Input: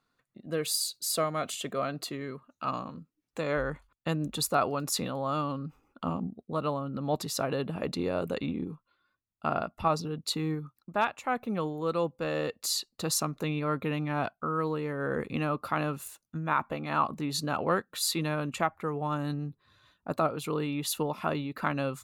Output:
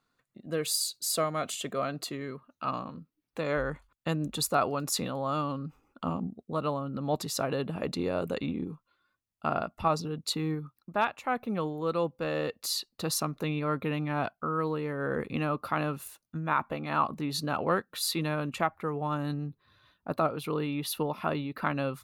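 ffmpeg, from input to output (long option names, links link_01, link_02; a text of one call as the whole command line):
ffmpeg -i in.wav -af "asetnsamples=nb_out_samples=441:pad=0,asendcmd='2.34 equalizer g -9.5;3.45 equalizer g 0.5;10.33 equalizer g -6;19.47 equalizer g -13',equalizer=frequency=7300:width_type=o:width=0.44:gain=1.5" out.wav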